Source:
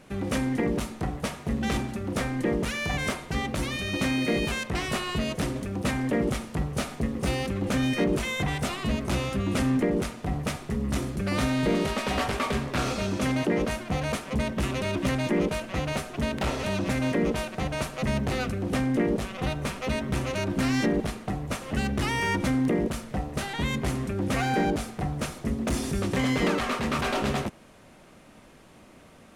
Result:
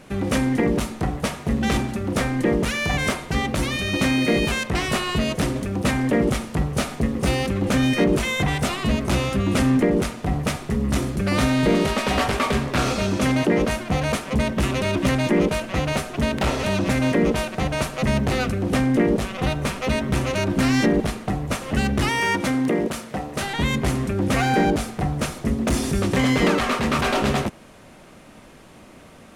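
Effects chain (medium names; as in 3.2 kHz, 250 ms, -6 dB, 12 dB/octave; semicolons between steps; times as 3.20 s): 22.09–23.41 s: high-pass 260 Hz 6 dB/octave; trim +6 dB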